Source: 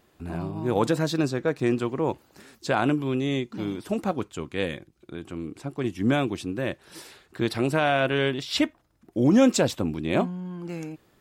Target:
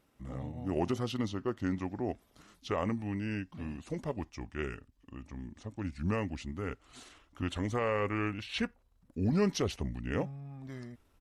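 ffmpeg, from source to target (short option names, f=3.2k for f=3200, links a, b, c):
-af "asubboost=boost=5.5:cutoff=81,asetrate=34006,aresample=44100,atempo=1.29684,volume=-8dB"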